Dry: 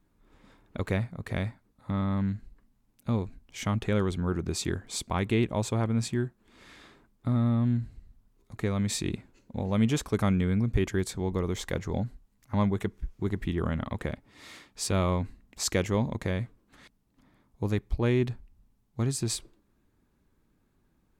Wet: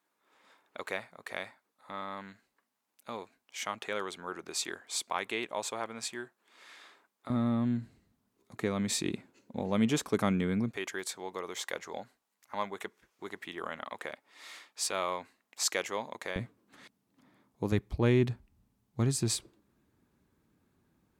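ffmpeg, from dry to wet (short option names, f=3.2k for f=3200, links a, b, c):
-af "asetnsamples=n=441:p=0,asendcmd='7.3 highpass f 200;10.71 highpass f 650;16.36 highpass f 170;17.72 highpass f 80',highpass=650"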